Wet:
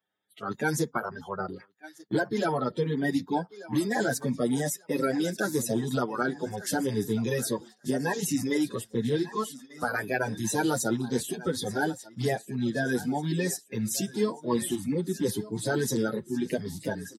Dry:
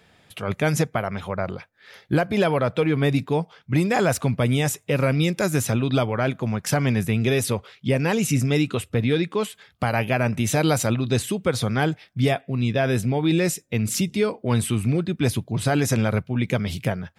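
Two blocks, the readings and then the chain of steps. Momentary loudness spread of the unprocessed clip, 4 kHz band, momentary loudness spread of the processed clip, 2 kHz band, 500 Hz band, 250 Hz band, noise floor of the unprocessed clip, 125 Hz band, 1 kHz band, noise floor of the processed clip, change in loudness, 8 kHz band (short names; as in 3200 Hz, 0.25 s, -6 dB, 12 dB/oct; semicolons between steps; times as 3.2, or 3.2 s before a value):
6 LU, -7.5 dB, 6 LU, -5.0 dB, -6.0 dB, -5.0 dB, -59 dBFS, -12.0 dB, -5.0 dB, -61 dBFS, -6.5 dB, -3.5 dB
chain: bin magnitudes rounded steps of 30 dB; bell 2400 Hz -12.5 dB 0.33 oct; on a send: thinning echo 1.19 s, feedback 51%, high-pass 300 Hz, level -14 dB; on the sum: spectral noise reduction 12 dB; bell 600 Hz -4 dB 0.71 oct; gate -41 dBFS, range -10 dB; Bessel high-pass 210 Hz, order 2; endless flanger 7.5 ms +0.59 Hz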